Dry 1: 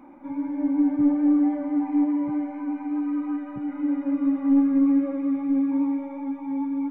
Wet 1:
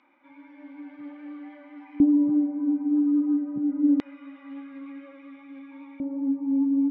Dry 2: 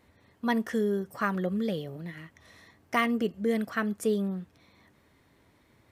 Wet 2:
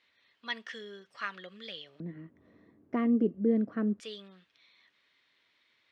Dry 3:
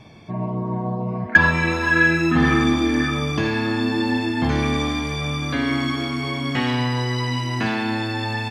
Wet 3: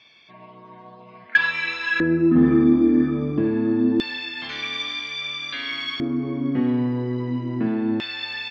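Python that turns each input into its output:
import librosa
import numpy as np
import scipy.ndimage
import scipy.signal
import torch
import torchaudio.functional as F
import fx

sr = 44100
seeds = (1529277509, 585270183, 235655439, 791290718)

y = scipy.signal.sosfilt(scipy.signal.butter(2, 4900.0, 'lowpass', fs=sr, output='sos'), x)
y = fx.peak_eq(y, sr, hz=810.0, db=-5.0, octaves=0.52)
y = fx.filter_lfo_bandpass(y, sr, shape='square', hz=0.25, low_hz=290.0, high_hz=3400.0, q=1.5)
y = y * 10.0 ** (4.5 / 20.0)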